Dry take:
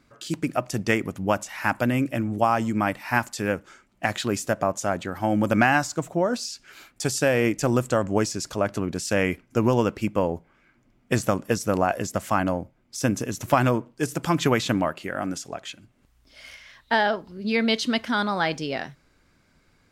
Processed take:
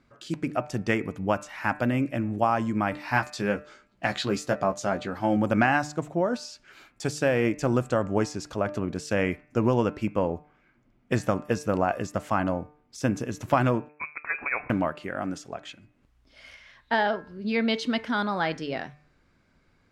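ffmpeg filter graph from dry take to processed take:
-filter_complex "[0:a]asettb=1/sr,asplit=3[a][b][c];[a]atrim=end=2.924[d];[b]atrim=start=2.92:end=5.37,asetpts=PTS-STARTPTS,afade=t=in:d=0.004:c=qsin,afade=t=out:st=2.446:d=0.004:c=qsin,equalizer=f=4.3k:w=1.9:g=7,asplit=2[e][f];[f]adelay=15,volume=-6dB[g];[e][g]amix=inputs=2:normalize=0,atrim=end_sample=108045[h];[c]atrim=start=5.366[i];[d][h]acrossfade=d=0.004:c1=hsin:c2=qsin[j];[j][i]acrossfade=d=0.004:c1=qsin:c2=hsin,asettb=1/sr,asplit=3[k][l][m];[k]atrim=end=13.894[n];[l]atrim=start=13.89:end=14.7,asetpts=PTS-STARTPTS,afade=t=in:d=0.004:c=qsin,afade=t=out:st=0.806:d=0.004:c=qsin,highpass=f=590:p=1,adynamicsmooth=sensitivity=5.5:basefreq=1.1k,lowpass=f=2.3k:t=q:w=0.5098,lowpass=f=2.3k:t=q:w=0.6013,lowpass=f=2.3k:t=q:w=0.9,lowpass=f=2.3k:t=q:w=2.563,afreqshift=-2700[o];[m]atrim=start=14.696[p];[n][o]acrossfade=d=0.004:c1=hsin:c2=qsin[q];[q][p]acrossfade=d=0.004:c1=qsin:c2=hsin,aemphasis=mode=reproduction:type=50kf,bandreject=f=149.3:t=h:w=4,bandreject=f=298.6:t=h:w=4,bandreject=f=447.9:t=h:w=4,bandreject=f=597.2:t=h:w=4,bandreject=f=746.5:t=h:w=4,bandreject=f=895.8:t=h:w=4,bandreject=f=1.0451k:t=h:w=4,bandreject=f=1.1944k:t=h:w=4,bandreject=f=1.3437k:t=h:w=4,bandreject=f=1.493k:t=h:w=4,bandreject=f=1.6423k:t=h:w=4,bandreject=f=1.7916k:t=h:w=4,bandreject=f=1.9409k:t=h:w=4,bandreject=f=2.0902k:t=h:w=4,bandreject=f=2.2395k:t=h:w=4,bandreject=f=2.3888k:t=h:w=4,bandreject=f=2.5381k:t=h:w=4,bandreject=f=2.6874k:t=h:w=4,volume=-2dB"

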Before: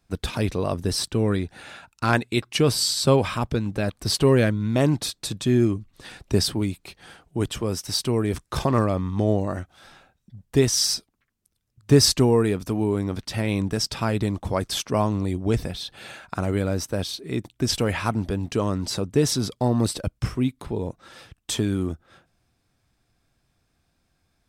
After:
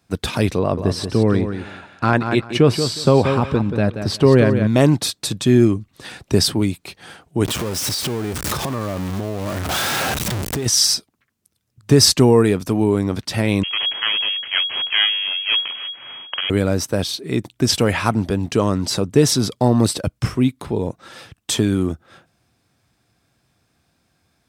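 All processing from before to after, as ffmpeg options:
-filter_complex "[0:a]asettb=1/sr,asplit=3[a][b][c];[a]atrim=end=0.594[d];[b]atrim=start=0.59:end=4.67,asetpts=PTS-STARTPTS,afade=t=in:d=0.004:c=qsin,afade=t=out:st=4.076:d=0.004:c=qsin,lowpass=f=1.9k:p=1,aecho=1:1:181|362|543:0.376|0.0714|0.0136,atrim=end_sample=179928[e];[c]atrim=start=4.666[f];[d][e]acrossfade=d=0.004:c1=hsin:c2=qsin[g];[g][f]acrossfade=d=0.004:c1=qsin:c2=hsin,asettb=1/sr,asplit=3[h][i][j];[h]atrim=end=7.454[k];[i]atrim=start=7.45:end=10.66,asetpts=PTS-STARTPTS,afade=t=in:d=0.004:c=qsin,afade=t=out:st=3.206:d=0.004:c=qsin,aeval=exprs='val(0)+0.5*0.0891*sgn(val(0))':c=same,acompressor=threshold=-27dB:ratio=10:attack=3.2:release=140:knee=1:detection=peak[l];[j]atrim=start=10.656[m];[k][l]acrossfade=d=0.004:c1=hsin:c2=qsin[n];[n][m]acrossfade=d=0.004:c1=qsin:c2=hsin,asettb=1/sr,asplit=3[o][p][q];[o]atrim=end=13.634[r];[p]atrim=start=13.63:end=16.5,asetpts=PTS-STARTPTS,afade=t=in:d=0.004:c=qsin,afade=t=out:st=2.866:d=0.004:c=qsin,highpass=f=230:w=0.5412,highpass=f=230:w=1.3066,aeval=exprs='abs(val(0))':c=same,lowpass=f=2.8k:t=q:w=0.5098,lowpass=f=2.8k:t=q:w=0.6013,lowpass=f=2.8k:t=q:w=0.9,lowpass=f=2.8k:t=q:w=2.563,afreqshift=-3300[s];[q]atrim=start=16.496[t];[r][s]acrossfade=d=0.004:c1=hsin:c2=qsin[u];[u][t]acrossfade=d=0.004:c1=qsin:c2=hsin,highpass=85,alimiter=level_in=7.5dB:limit=-1dB:release=50:level=0:latency=1,volume=-1dB"

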